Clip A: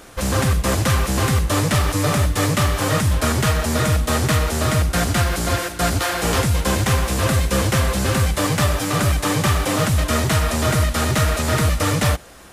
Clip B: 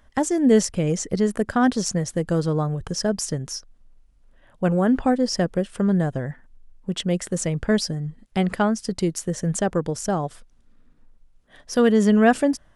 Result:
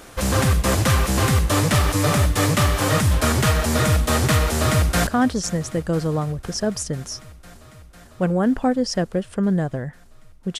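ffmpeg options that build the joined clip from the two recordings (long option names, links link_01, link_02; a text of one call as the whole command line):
ffmpeg -i cue0.wav -i cue1.wav -filter_complex "[0:a]apad=whole_dur=10.59,atrim=end=10.59,atrim=end=5.072[link_01];[1:a]atrim=start=1.488:end=7.01[link_02];[link_01][link_02]acrossfade=duration=0.004:curve1=hsin:curve2=hsin,asplit=2[link_03][link_04];[link_04]afade=type=in:start_time=4.55:duration=0.01,afade=type=out:start_time=5.07:duration=0.01,aecho=0:1:500|1000|1500|2000|2500|3000|3500|4000|4500|5000|5500|6000:0.133352|0.106682|0.0853454|0.0682763|0.054621|0.0436968|0.0349575|0.027966|0.0223728|0.0178982|0.0143186|0.0114549[link_05];[link_03][link_05]amix=inputs=2:normalize=0" out.wav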